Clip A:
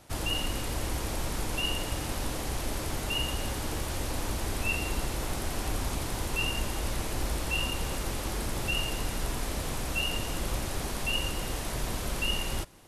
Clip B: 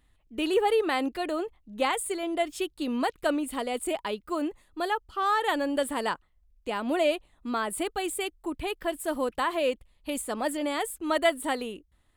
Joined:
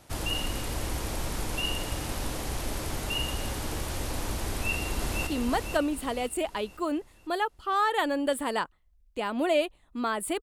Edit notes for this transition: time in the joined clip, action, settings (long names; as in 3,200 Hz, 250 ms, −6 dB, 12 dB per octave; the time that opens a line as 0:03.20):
clip A
0:04.50–0:05.27: delay throw 500 ms, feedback 40%, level −4.5 dB
0:05.27: continue with clip B from 0:02.77